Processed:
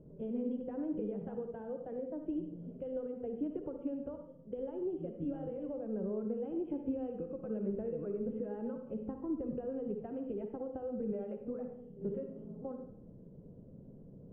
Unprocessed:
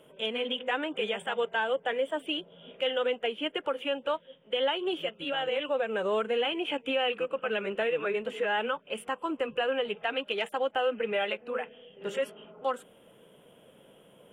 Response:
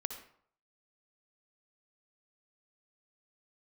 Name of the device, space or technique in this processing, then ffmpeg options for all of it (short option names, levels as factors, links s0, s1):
television next door: -filter_complex "[0:a]aemphasis=mode=reproduction:type=bsi,acompressor=threshold=0.0282:ratio=6,lowpass=260[s0];[1:a]atrim=start_sample=2205[s1];[s0][s1]afir=irnorm=-1:irlink=0,volume=1.88"